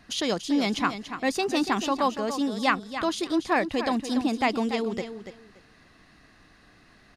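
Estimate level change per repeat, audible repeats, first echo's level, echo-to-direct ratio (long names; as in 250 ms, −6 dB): −14.5 dB, 2, −10.0 dB, −10.0 dB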